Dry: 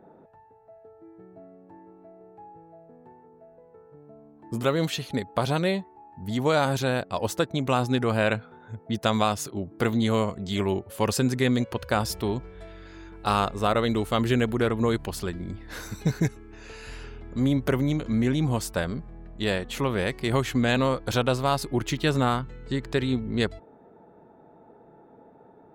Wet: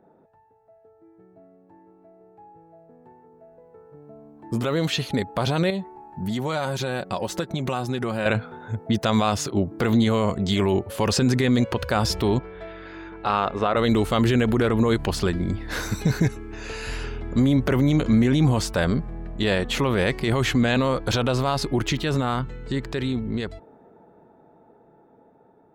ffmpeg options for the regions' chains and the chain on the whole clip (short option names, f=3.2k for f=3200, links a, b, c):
-filter_complex "[0:a]asettb=1/sr,asplit=3[a][b][c];[a]atrim=end=5.704[d];[b]atrim=start=5.7:end=8.26,asetpts=PTS-STARTPTS,afade=t=in:d=0.004:c=qsin,afade=t=out:st=2.556:d=0.004:c=qsin,aecho=1:1:5.4:0.4,atrim=end_sample=112896,acompressor=threshold=-32dB:ratio=5:attack=3.2:release=140:knee=1:detection=peak[e];[c]atrim=start=8.256[f];[d][e]acrossfade=d=0.004:c1=hsin:c2=qsin[g];[g][f]acrossfade=d=0.004:c1=qsin:c2=hsin,asettb=1/sr,asplit=3[h][i][j];[h]atrim=end=12.394[k];[i]atrim=start=12.39:end=13.77,asetpts=PTS-STARTPTS,afade=t=in:d=0.004:c=qsin,afade=t=out:st=1.376:d=0.004:c=qsin,lowpass=2.9k,lowshelf=f=180:g=-12[l];[j]atrim=start=13.766[m];[k][l]acrossfade=d=0.004:c1=hsin:c2=qsin[n];[n][m]acrossfade=d=0.004:c1=qsin:c2=hsin,acrossover=split=6600[o][p];[p]acompressor=threshold=-50dB:ratio=4:attack=1:release=60[q];[o][q]amix=inputs=2:normalize=0,alimiter=limit=-20dB:level=0:latency=1:release=29,dynaudnorm=f=800:g=11:m=14dB,volume=-4.5dB"